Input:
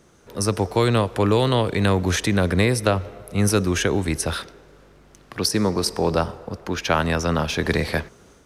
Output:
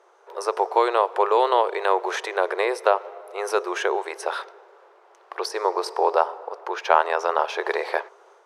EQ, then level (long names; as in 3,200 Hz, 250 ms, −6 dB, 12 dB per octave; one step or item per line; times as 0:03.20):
linear-phase brick-wall high-pass 350 Hz
low-pass filter 2,500 Hz 6 dB per octave
parametric band 900 Hz +11.5 dB 1.1 octaves
−3.0 dB